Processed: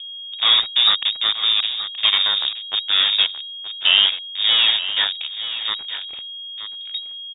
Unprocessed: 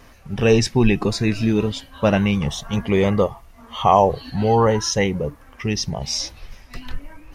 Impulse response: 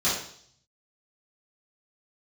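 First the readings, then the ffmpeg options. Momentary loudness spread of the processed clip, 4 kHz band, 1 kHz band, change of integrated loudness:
16 LU, +16.0 dB, -10.5 dB, +3.5 dB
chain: -filter_complex "[0:a]acrusher=bits=2:mix=0:aa=0.5,adynamicsmooth=sensitivity=3.5:basefreq=630,aeval=exprs='val(0)+0.0316*sin(2*PI*530*n/s)':c=same,asplit=2[s0][s1];[s1]aecho=0:1:925:0.251[s2];[s0][s2]amix=inputs=2:normalize=0,lowpass=f=3200:t=q:w=0.5098,lowpass=f=3200:t=q:w=0.6013,lowpass=f=3200:t=q:w=0.9,lowpass=f=3200:t=q:w=2.563,afreqshift=-3800,volume=0.891"

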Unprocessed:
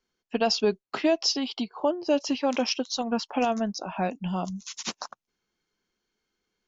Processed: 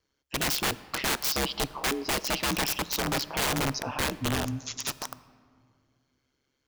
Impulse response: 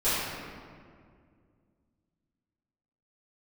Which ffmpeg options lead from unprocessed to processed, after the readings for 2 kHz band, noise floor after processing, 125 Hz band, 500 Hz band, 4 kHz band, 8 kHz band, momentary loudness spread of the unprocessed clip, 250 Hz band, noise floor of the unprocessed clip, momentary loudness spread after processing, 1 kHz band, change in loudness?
+6.0 dB, -78 dBFS, +4.5 dB, -8.0 dB, +1.0 dB, no reading, 11 LU, -6.0 dB, -82 dBFS, 7 LU, -1.5 dB, -1.0 dB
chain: -filter_complex "[0:a]aeval=exprs='val(0)*sin(2*PI*68*n/s)':c=same,aeval=exprs='(mod(20*val(0)+1,2)-1)/20':c=same,asplit=2[s0][s1];[1:a]atrim=start_sample=2205,adelay=16[s2];[s1][s2]afir=irnorm=-1:irlink=0,volume=0.0316[s3];[s0][s3]amix=inputs=2:normalize=0,volume=1.78"

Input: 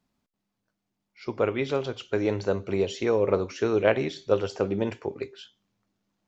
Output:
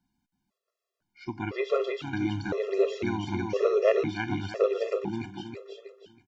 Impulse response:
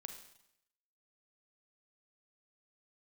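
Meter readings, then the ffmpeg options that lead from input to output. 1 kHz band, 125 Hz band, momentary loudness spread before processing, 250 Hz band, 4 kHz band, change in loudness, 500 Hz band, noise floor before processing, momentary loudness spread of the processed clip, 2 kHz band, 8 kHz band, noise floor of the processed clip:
-1.5 dB, -2.0 dB, 12 LU, -1.5 dB, -3.0 dB, -2.0 dB, -1.5 dB, -82 dBFS, 17 LU, -1.5 dB, no reading, under -85 dBFS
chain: -filter_complex "[0:a]aecho=1:1:322|644|966|1288|1610:0.668|0.247|0.0915|0.0339|0.0125,acrossover=split=4400[s0][s1];[s1]acompressor=threshold=0.00282:ratio=4:attack=1:release=60[s2];[s0][s2]amix=inputs=2:normalize=0,afftfilt=real='re*gt(sin(2*PI*0.99*pts/sr)*(1-2*mod(floor(b*sr/1024/350),2)),0)':imag='im*gt(sin(2*PI*0.99*pts/sr)*(1-2*mod(floor(b*sr/1024/350),2)),0)':win_size=1024:overlap=0.75"

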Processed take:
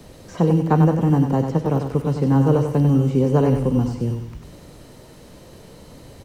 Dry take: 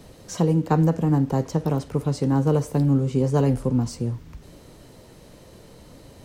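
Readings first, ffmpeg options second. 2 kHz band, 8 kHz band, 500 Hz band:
+3.5 dB, no reading, +4.0 dB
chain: -filter_complex "[0:a]acrossover=split=2800[s0][s1];[s1]acompressor=threshold=0.00251:ratio=4:attack=1:release=60[s2];[s0][s2]amix=inputs=2:normalize=0,acrossover=split=100|1100[s3][s4][s5];[s3]acrusher=samples=15:mix=1:aa=0.000001[s6];[s6][s4][s5]amix=inputs=3:normalize=0,aecho=1:1:96|192|288|384:0.473|0.18|0.0683|0.026,volume=1.41"

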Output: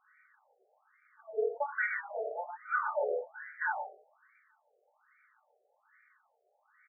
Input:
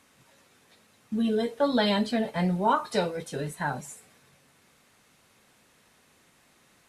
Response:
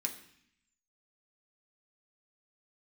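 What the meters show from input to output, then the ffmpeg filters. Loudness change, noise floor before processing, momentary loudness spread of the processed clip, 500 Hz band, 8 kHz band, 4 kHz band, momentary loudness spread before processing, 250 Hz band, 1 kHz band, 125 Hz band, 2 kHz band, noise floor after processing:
-7.5 dB, -63 dBFS, 8 LU, -6.5 dB, under -35 dB, under -40 dB, 11 LU, under -35 dB, -7.0 dB, under -40 dB, +1.5 dB, -75 dBFS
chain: -filter_complex "[0:a]bandreject=f=1000:w=6.6,asplit=2[s0][s1];[s1]adelay=26,volume=0.501[s2];[s0][s2]amix=inputs=2:normalize=0,asplit=2[s3][s4];[s4]adelay=122.4,volume=0.355,highshelf=f=4000:g=-2.76[s5];[s3][s5]amix=inputs=2:normalize=0[s6];[1:a]atrim=start_sample=2205,afade=t=out:st=0.17:d=0.01,atrim=end_sample=7938[s7];[s6][s7]afir=irnorm=-1:irlink=0,afftfilt=real='re*between(b*sr/1024,540*pow(1700/540,0.5+0.5*sin(2*PI*1.2*pts/sr))/1.41,540*pow(1700/540,0.5+0.5*sin(2*PI*1.2*pts/sr))*1.41)':imag='im*between(b*sr/1024,540*pow(1700/540,0.5+0.5*sin(2*PI*1.2*pts/sr))/1.41,540*pow(1700/540,0.5+0.5*sin(2*PI*1.2*pts/sr))*1.41)':win_size=1024:overlap=0.75"

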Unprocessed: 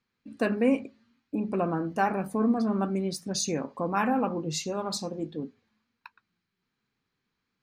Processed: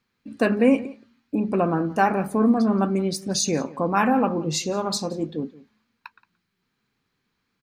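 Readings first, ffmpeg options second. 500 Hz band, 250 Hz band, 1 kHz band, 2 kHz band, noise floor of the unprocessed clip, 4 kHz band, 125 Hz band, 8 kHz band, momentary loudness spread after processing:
+6.0 dB, +6.0 dB, +6.0 dB, +6.0 dB, -82 dBFS, +6.0 dB, +6.0 dB, +6.0 dB, 10 LU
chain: -filter_complex "[0:a]asplit=2[s0][s1];[s1]adelay=174.9,volume=0.1,highshelf=f=4000:g=-3.94[s2];[s0][s2]amix=inputs=2:normalize=0,volume=2"

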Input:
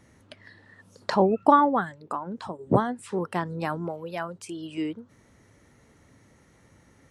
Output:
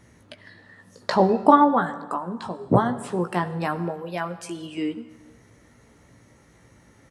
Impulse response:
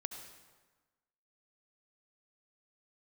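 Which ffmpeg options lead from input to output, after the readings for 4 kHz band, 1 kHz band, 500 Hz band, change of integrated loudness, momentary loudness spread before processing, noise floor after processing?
+3.5 dB, +3.0 dB, +2.5 dB, +3.0 dB, 17 LU, -56 dBFS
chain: -filter_complex "[0:a]asplit=2[s0][s1];[s1]adelay=17,volume=0.447[s2];[s0][s2]amix=inputs=2:normalize=0,asplit=2[s3][s4];[1:a]atrim=start_sample=2205[s5];[s4][s5]afir=irnorm=-1:irlink=0,volume=0.794[s6];[s3][s6]amix=inputs=2:normalize=0,volume=0.841"

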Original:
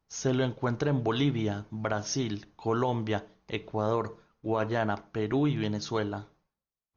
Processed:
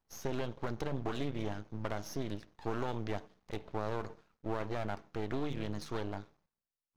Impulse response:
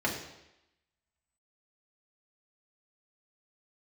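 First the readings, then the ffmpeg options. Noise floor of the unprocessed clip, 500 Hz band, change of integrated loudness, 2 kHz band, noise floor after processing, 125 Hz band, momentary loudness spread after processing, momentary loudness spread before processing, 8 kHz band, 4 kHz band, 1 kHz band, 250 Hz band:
under -85 dBFS, -8.5 dB, -9.0 dB, -8.5 dB, under -85 dBFS, -9.5 dB, 6 LU, 8 LU, no reading, -10.5 dB, -8.0 dB, -9.5 dB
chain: -filter_complex "[0:a]acrossover=split=1000|2200[s0][s1][s2];[s0]acompressor=threshold=0.0398:ratio=4[s3];[s1]acompressor=threshold=0.00562:ratio=4[s4];[s2]acompressor=threshold=0.00794:ratio=4[s5];[s3][s4][s5]amix=inputs=3:normalize=0,aeval=exprs='max(val(0),0)':c=same,volume=0.841"

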